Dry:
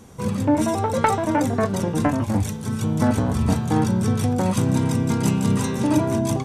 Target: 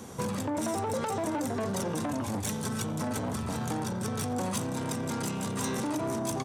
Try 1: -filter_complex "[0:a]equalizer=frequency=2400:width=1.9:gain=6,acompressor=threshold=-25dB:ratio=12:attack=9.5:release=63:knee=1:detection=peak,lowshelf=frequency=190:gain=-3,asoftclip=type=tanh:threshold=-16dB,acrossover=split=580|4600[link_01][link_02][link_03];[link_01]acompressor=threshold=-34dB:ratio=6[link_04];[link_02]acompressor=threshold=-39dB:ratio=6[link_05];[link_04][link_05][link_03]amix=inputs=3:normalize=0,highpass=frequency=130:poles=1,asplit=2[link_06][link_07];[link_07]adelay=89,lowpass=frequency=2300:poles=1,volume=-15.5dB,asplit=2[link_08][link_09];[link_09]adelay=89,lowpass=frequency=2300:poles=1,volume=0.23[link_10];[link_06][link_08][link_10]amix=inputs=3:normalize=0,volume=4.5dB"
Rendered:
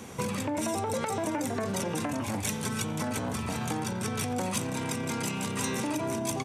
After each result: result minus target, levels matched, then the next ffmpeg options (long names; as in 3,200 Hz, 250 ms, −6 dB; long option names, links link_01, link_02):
soft clipping: distortion −13 dB; 2,000 Hz band +3.5 dB
-filter_complex "[0:a]equalizer=frequency=2400:width=1.9:gain=6,acompressor=threshold=-25dB:ratio=12:attack=9.5:release=63:knee=1:detection=peak,lowshelf=frequency=190:gain=-3,asoftclip=type=tanh:threshold=-26dB,acrossover=split=580|4600[link_01][link_02][link_03];[link_01]acompressor=threshold=-34dB:ratio=6[link_04];[link_02]acompressor=threshold=-39dB:ratio=6[link_05];[link_04][link_05][link_03]amix=inputs=3:normalize=0,highpass=frequency=130:poles=1,asplit=2[link_06][link_07];[link_07]adelay=89,lowpass=frequency=2300:poles=1,volume=-15.5dB,asplit=2[link_08][link_09];[link_09]adelay=89,lowpass=frequency=2300:poles=1,volume=0.23[link_10];[link_06][link_08][link_10]amix=inputs=3:normalize=0,volume=4.5dB"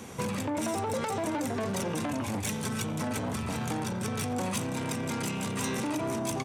2,000 Hz band +3.0 dB
-filter_complex "[0:a]equalizer=frequency=2400:width=1.9:gain=-2.5,acompressor=threshold=-25dB:ratio=12:attack=9.5:release=63:knee=1:detection=peak,lowshelf=frequency=190:gain=-3,asoftclip=type=tanh:threshold=-26dB,acrossover=split=580|4600[link_01][link_02][link_03];[link_01]acompressor=threshold=-34dB:ratio=6[link_04];[link_02]acompressor=threshold=-39dB:ratio=6[link_05];[link_04][link_05][link_03]amix=inputs=3:normalize=0,highpass=frequency=130:poles=1,asplit=2[link_06][link_07];[link_07]adelay=89,lowpass=frequency=2300:poles=1,volume=-15.5dB,asplit=2[link_08][link_09];[link_09]adelay=89,lowpass=frequency=2300:poles=1,volume=0.23[link_10];[link_06][link_08][link_10]amix=inputs=3:normalize=0,volume=4.5dB"